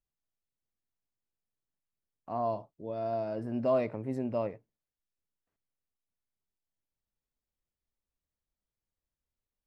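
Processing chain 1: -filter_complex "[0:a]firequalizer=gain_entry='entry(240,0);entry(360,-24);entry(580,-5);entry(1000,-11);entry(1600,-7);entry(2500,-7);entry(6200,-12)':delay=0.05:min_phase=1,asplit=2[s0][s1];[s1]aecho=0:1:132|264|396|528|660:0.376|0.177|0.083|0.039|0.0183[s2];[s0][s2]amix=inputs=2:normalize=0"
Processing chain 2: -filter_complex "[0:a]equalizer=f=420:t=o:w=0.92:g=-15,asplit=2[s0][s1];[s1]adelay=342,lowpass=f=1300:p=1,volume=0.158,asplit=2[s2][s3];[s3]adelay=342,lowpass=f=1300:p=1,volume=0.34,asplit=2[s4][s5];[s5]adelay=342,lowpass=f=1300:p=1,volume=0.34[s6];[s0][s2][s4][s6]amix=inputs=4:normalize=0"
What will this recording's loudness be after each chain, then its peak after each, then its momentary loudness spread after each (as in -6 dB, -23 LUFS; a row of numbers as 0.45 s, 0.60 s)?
-38.0 LUFS, -38.5 LUFS; -22.5 dBFS, -24.0 dBFS; 11 LU, 14 LU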